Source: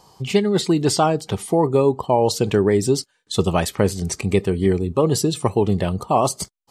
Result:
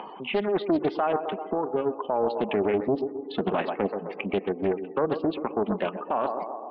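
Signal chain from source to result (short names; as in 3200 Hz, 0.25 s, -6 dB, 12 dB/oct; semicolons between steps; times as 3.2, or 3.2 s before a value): upward compressor, threshold -24 dBFS; 2.82–3.69 low shelf 460 Hz +6 dB; added harmonics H 7 -42 dB, 8 -39 dB, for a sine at -2.5 dBFS; reverb removal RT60 1.4 s; 1.28–2.01 compressor 4:1, threshold -24 dBFS, peak gain reduction 9.5 dB; elliptic band-pass 230–2800 Hz, stop band 40 dB; narrowing echo 0.129 s, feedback 64%, band-pass 750 Hz, level -11 dB; FDN reverb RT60 4 s, high-frequency decay 0.65×, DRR 19 dB; spectral gate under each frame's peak -30 dB strong; 4.46–5.2 bell 290 Hz -3 dB 0.94 oct; limiter -15.5 dBFS, peak gain reduction 11 dB; Doppler distortion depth 0.46 ms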